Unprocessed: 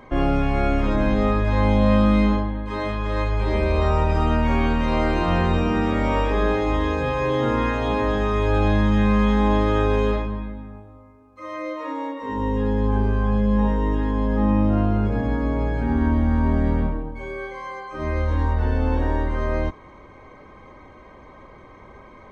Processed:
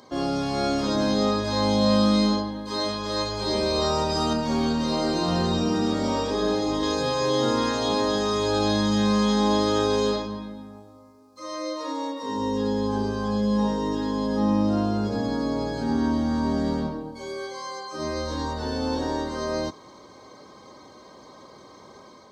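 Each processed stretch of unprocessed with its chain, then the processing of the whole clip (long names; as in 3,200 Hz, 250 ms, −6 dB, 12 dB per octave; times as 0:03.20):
0:04.33–0:06.83: low-shelf EQ 410 Hz +6.5 dB + flanger 1.3 Hz, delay 5.8 ms, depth 2.3 ms, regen −68%
whole clip: high-pass filter 160 Hz 12 dB per octave; high shelf with overshoot 3,300 Hz +12 dB, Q 3; automatic gain control gain up to 3.5 dB; level −4 dB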